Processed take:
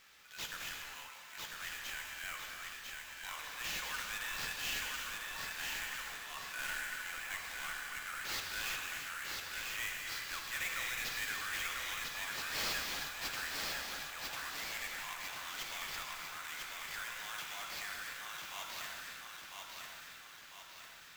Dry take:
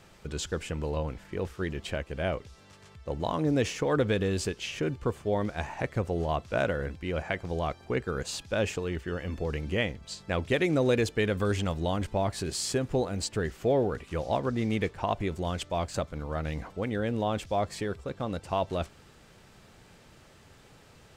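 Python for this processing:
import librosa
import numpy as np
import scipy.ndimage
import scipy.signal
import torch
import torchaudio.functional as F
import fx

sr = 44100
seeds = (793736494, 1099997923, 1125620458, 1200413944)

p1 = scipy.signal.sosfilt(scipy.signal.butter(4, 1400.0, 'highpass', fs=sr, output='sos'), x)
p2 = fx.transient(p1, sr, attack_db=-6, sustain_db=6)
p3 = fx.schmitt(p2, sr, flips_db=-28.5)
p4 = p2 + (p3 * 10.0 ** (-10.0 / 20.0))
p5 = fx.sample_hold(p4, sr, seeds[0], rate_hz=9700.0, jitter_pct=20)
p6 = 10.0 ** (-32.0 / 20.0) * np.tanh(p5 / 10.0 ** (-32.0 / 20.0))
p7 = p6 + fx.echo_feedback(p6, sr, ms=998, feedback_pct=52, wet_db=-3.5, dry=0)
p8 = fx.rev_gated(p7, sr, seeds[1], gate_ms=400, shape='flat', drr_db=1.0)
y = p8 * 10.0 ** (-1.5 / 20.0)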